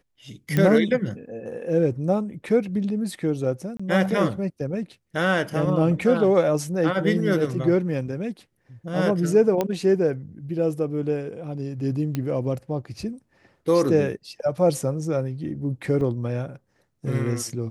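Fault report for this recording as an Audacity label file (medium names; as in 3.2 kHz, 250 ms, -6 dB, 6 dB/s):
0.570000	0.570000	pop -10 dBFS
3.770000	3.790000	dropout 25 ms
9.610000	9.610000	pop -10 dBFS
12.150000	12.150000	pop -14 dBFS
16.010000	16.010000	dropout 2.7 ms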